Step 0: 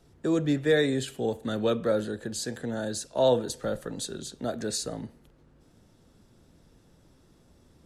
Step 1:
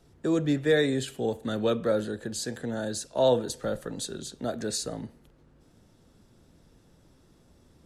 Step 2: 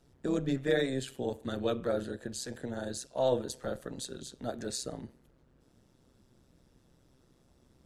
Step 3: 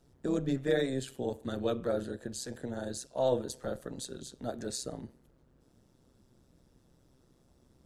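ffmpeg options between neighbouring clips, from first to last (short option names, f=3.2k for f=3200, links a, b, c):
-af anull
-af "tremolo=f=130:d=0.71,volume=-2.5dB"
-af "equalizer=f=2.4k:t=o:w=1.7:g=-3.5"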